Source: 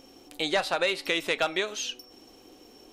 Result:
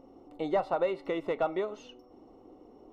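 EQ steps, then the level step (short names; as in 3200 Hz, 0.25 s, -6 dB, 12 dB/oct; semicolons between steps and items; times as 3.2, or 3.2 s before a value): polynomial smoothing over 65 samples; 0.0 dB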